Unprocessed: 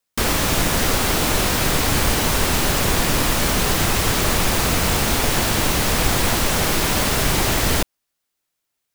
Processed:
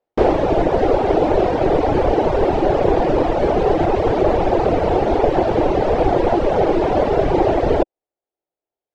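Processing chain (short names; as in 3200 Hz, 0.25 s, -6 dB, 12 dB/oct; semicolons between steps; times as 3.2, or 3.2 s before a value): tape spacing loss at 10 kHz 38 dB; reverb removal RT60 1.1 s; band shelf 520 Hz +14 dB; gain +1.5 dB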